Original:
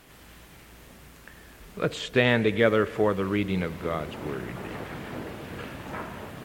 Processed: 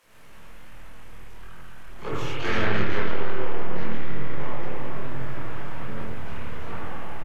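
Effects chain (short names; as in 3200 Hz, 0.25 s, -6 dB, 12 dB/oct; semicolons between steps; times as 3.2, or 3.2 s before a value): half-wave gain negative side -7 dB; bands offset in time highs, lows 30 ms, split 380 Hz; harmoniser -4 st -4 dB, -3 st -15 dB, +12 st -11 dB; bell 230 Hz -2.5 dB 2 oct; spring tank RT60 2.8 s, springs 41/45 ms, chirp 45 ms, DRR -7 dB; soft clip -9.5 dBFS, distortion -14 dB; chorus voices 2, 1.4 Hz, delay 23 ms, depth 3 ms; varispeed -11%; gain -1.5 dB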